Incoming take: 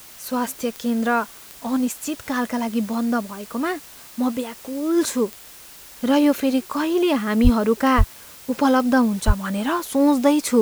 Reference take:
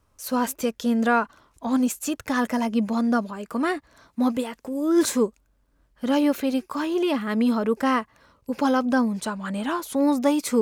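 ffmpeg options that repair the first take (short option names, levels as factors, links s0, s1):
-filter_complex "[0:a]adeclick=t=4,asplit=3[s0][s1][s2];[s0]afade=t=out:st=7.43:d=0.02[s3];[s1]highpass=f=140:w=0.5412,highpass=f=140:w=1.3066,afade=t=in:st=7.43:d=0.02,afade=t=out:st=7.55:d=0.02[s4];[s2]afade=t=in:st=7.55:d=0.02[s5];[s3][s4][s5]amix=inputs=3:normalize=0,asplit=3[s6][s7][s8];[s6]afade=t=out:st=7.97:d=0.02[s9];[s7]highpass=f=140:w=0.5412,highpass=f=140:w=1.3066,afade=t=in:st=7.97:d=0.02,afade=t=out:st=8.09:d=0.02[s10];[s8]afade=t=in:st=8.09:d=0.02[s11];[s9][s10][s11]amix=inputs=3:normalize=0,asplit=3[s12][s13][s14];[s12]afade=t=out:st=9.26:d=0.02[s15];[s13]highpass=f=140:w=0.5412,highpass=f=140:w=1.3066,afade=t=in:st=9.26:d=0.02,afade=t=out:st=9.38:d=0.02[s16];[s14]afade=t=in:st=9.38:d=0.02[s17];[s15][s16][s17]amix=inputs=3:normalize=0,afwtdn=0.0071,asetnsamples=n=441:p=0,asendcmd='5.83 volume volume -4dB',volume=1"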